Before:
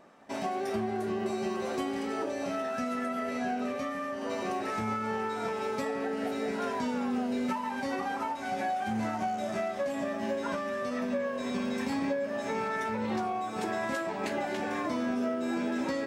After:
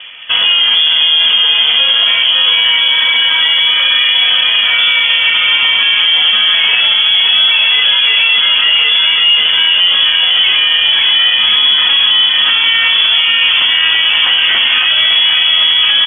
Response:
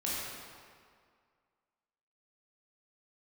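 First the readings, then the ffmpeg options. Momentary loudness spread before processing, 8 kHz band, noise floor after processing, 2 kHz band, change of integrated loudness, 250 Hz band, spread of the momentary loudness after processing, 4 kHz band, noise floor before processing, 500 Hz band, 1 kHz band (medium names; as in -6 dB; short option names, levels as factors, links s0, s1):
2 LU, under -25 dB, -11 dBFS, +27.0 dB, +25.5 dB, under -10 dB, 1 LU, +44.0 dB, -36 dBFS, -3.5 dB, +8.0 dB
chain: -filter_complex "[0:a]acrossover=split=380|1300|1700[s0][s1][s2][s3];[s1]acrusher=bits=3:mode=log:mix=0:aa=0.000001[s4];[s0][s4][s2][s3]amix=inputs=4:normalize=0,lowpass=f=3100:t=q:w=0.5098,lowpass=f=3100:t=q:w=0.6013,lowpass=f=3100:t=q:w=0.9,lowpass=f=3100:t=q:w=2.563,afreqshift=-3600,aecho=1:1:560|1036|1441|1785|2077:0.631|0.398|0.251|0.158|0.1,alimiter=level_in=22.4:limit=0.891:release=50:level=0:latency=1,volume=0.891"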